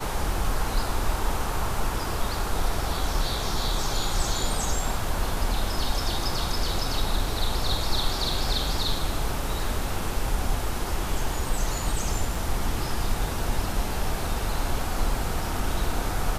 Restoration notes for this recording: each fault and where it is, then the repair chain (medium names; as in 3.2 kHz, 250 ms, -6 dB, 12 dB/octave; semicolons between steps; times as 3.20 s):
8.32 s: dropout 2.1 ms
12.35 s: dropout 3 ms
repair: interpolate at 8.32 s, 2.1 ms; interpolate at 12.35 s, 3 ms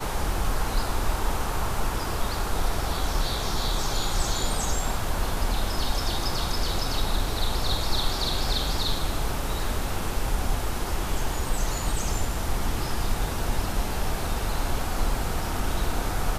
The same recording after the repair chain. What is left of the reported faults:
nothing left